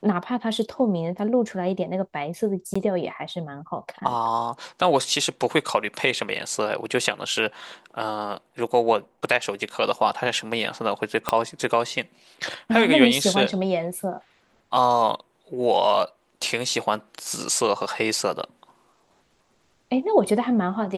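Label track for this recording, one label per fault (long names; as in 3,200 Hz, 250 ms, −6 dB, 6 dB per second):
2.740000	2.750000	drop-out 15 ms
11.290000	11.290000	click −6 dBFS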